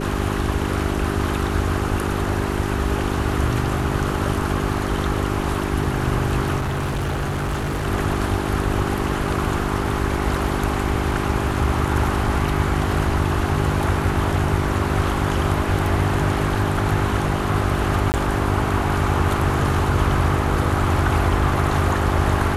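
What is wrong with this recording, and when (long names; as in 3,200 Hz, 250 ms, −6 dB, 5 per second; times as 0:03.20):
mains hum 50 Hz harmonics 8 −25 dBFS
0:06.57–0:07.87: clipping −20 dBFS
0:18.12–0:18.14: drop-out 19 ms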